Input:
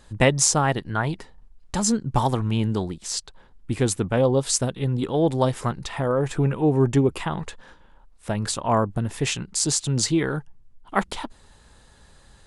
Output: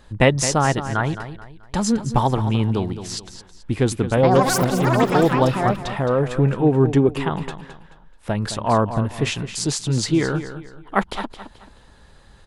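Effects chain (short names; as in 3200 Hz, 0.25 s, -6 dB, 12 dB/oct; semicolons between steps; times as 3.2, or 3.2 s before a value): bell 8200 Hz -8.5 dB 1.2 oct; 4.03–6.29 echoes that change speed 0.139 s, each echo +6 st, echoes 3; feedback echo 0.216 s, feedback 33%, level -11.5 dB; gain +3 dB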